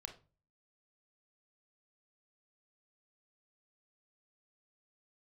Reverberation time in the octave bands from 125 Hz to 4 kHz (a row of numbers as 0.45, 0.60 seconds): 0.60, 0.50, 0.40, 0.30, 0.25, 0.25 seconds